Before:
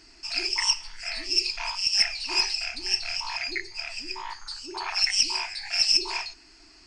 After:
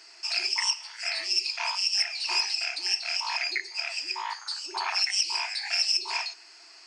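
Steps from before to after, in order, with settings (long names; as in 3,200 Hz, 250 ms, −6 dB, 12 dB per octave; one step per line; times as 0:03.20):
high-pass filter 490 Hz 24 dB per octave
downward compressor 2.5 to 1, threshold −29 dBFS, peak gain reduction 9 dB
level +3.5 dB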